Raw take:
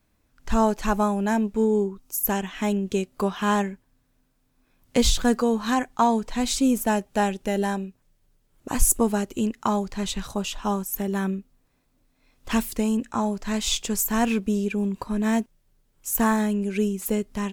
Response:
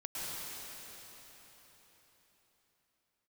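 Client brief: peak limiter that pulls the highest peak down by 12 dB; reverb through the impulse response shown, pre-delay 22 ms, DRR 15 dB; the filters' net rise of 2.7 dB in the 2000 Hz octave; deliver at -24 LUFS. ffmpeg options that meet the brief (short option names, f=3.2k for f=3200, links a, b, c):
-filter_complex "[0:a]equalizer=f=2k:t=o:g=3.5,alimiter=limit=-17dB:level=0:latency=1,asplit=2[a][b];[1:a]atrim=start_sample=2205,adelay=22[c];[b][c]afir=irnorm=-1:irlink=0,volume=-18dB[d];[a][d]amix=inputs=2:normalize=0,volume=3.5dB"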